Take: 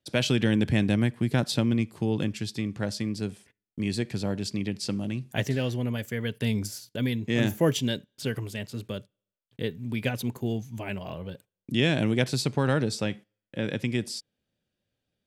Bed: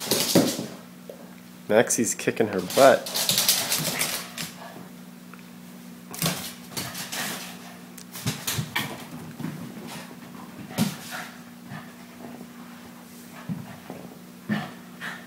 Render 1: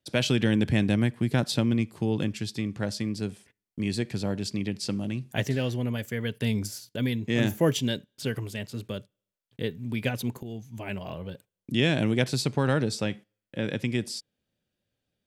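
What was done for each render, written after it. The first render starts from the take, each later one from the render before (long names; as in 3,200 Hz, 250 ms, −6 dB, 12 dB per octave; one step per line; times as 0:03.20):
0:10.43–0:10.95: fade in, from −12 dB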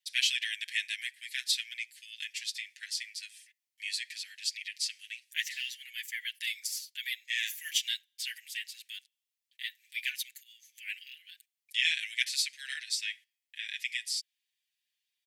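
Butterworth high-pass 1,800 Hz 72 dB per octave
comb filter 6.8 ms, depth 91%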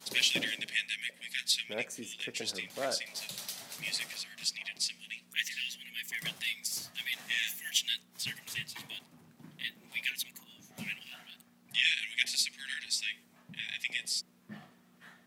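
mix in bed −20.5 dB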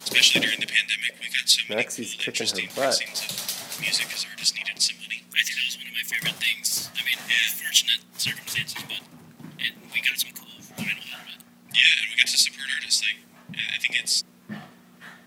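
level +11 dB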